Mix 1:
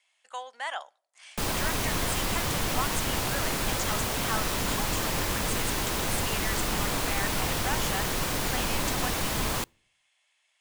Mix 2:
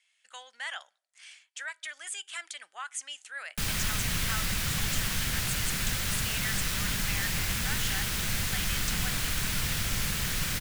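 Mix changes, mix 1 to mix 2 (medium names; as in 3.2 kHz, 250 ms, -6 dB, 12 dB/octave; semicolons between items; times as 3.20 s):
background: entry +2.20 s; master: add high-order bell 540 Hz -12 dB 2.4 oct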